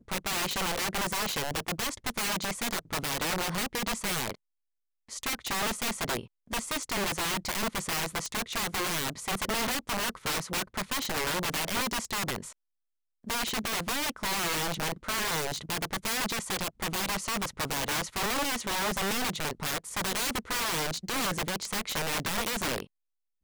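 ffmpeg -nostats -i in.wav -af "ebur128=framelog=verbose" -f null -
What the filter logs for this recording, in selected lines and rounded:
Integrated loudness:
  I:         -30.4 LUFS
  Threshold: -40.6 LUFS
Loudness range:
  LRA:         1.8 LU
  Threshold: -50.7 LUFS
  LRA low:   -31.8 LUFS
  LRA high:  -29.9 LUFS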